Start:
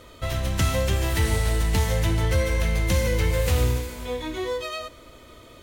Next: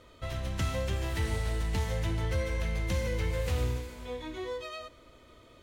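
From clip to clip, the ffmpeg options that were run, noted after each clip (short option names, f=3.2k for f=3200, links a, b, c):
-af "highshelf=f=8.7k:g=-10,volume=-8.5dB"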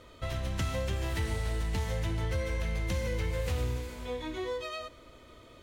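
-af "acompressor=threshold=-33dB:ratio=2,volume=2.5dB"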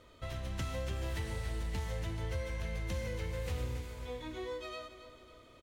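-af "aecho=1:1:275|550|825|1100|1375:0.251|0.121|0.0579|0.0278|0.0133,volume=-6dB"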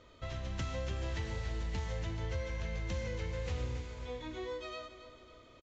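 -af "aresample=16000,aresample=44100"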